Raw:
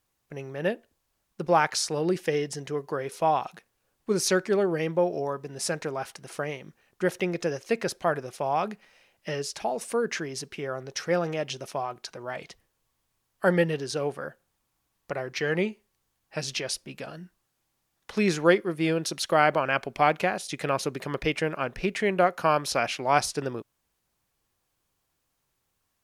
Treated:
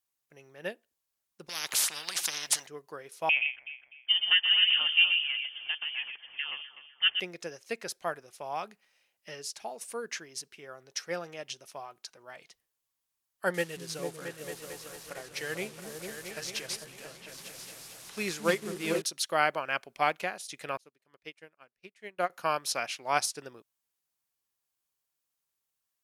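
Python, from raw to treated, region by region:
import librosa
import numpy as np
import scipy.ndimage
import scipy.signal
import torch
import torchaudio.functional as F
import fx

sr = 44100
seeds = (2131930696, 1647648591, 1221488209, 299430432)

y = fx.chain(x, sr, fx.high_shelf(hz=8000.0, db=-9.0),
    fx.spectral_comp(ratio=10.0), at=(1.49, 2.67))
y = fx.chain(y, sr, fx.echo_alternate(ms=125, hz=1400.0, feedback_pct=66, wet_db=-4.0),
    fx.freq_invert(carrier_hz=3300), at=(3.29, 7.2))
y = fx.chain(y, sr, fx.delta_mod(bps=64000, step_db=-35.0),
    fx.echo_opening(ms=224, hz=200, octaves=2, feedback_pct=70, wet_db=0), at=(13.54, 19.02))
y = fx.chain(y, sr, fx.low_shelf(hz=67.0, db=-6.0),
    fx.upward_expand(threshold_db=-40.0, expansion=2.5), at=(20.77, 22.3))
y = fx.tilt_eq(y, sr, slope=2.5)
y = fx.upward_expand(y, sr, threshold_db=-37.0, expansion=1.5)
y = F.gain(torch.from_numpy(y), -3.0).numpy()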